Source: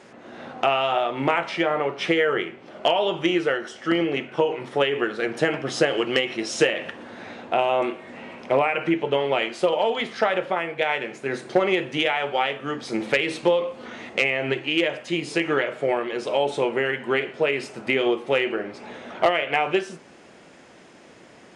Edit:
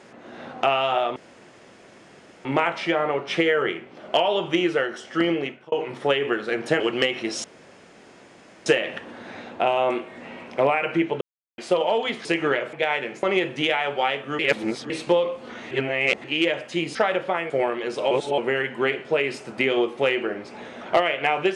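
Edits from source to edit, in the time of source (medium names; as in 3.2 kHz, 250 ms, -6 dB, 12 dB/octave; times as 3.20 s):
1.16 s: insert room tone 1.29 s
4.05–4.43 s: fade out
5.51–5.94 s: delete
6.58 s: insert room tone 1.22 s
9.13–9.50 s: mute
10.17–10.72 s: swap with 15.31–15.79 s
11.22–11.59 s: delete
12.75–13.26 s: reverse
14.07–14.60 s: reverse
16.40–16.67 s: reverse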